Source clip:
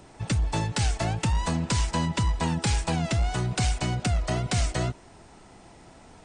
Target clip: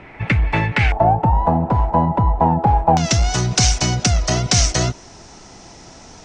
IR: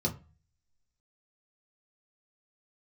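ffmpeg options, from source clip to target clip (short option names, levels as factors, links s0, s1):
-af "asetnsamples=n=441:p=0,asendcmd='0.92 lowpass f 800;2.97 lowpass f 5900',lowpass=f=2200:t=q:w=4.9,volume=2.51"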